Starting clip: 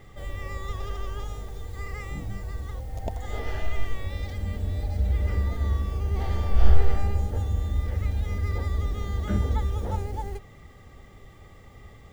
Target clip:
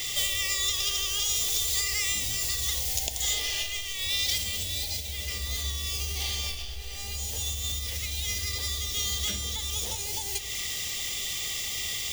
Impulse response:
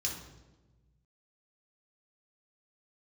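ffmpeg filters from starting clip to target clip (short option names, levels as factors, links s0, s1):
-filter_complex "[0:a]lowshelf=f=410:g=-12,acompressor=threshold=0.00501:ratio=16,aexciter=amount=12:drive=5.2:freq=2200,asplit=2[s0][s1];[1:a]atrim=start_sample=2205[s2];[s1][s2]afir=irnorm=-1:irlink=0,volume=0.355[s3];[s0][s3]amix=inputs=2:normalize=0,volume=2.24"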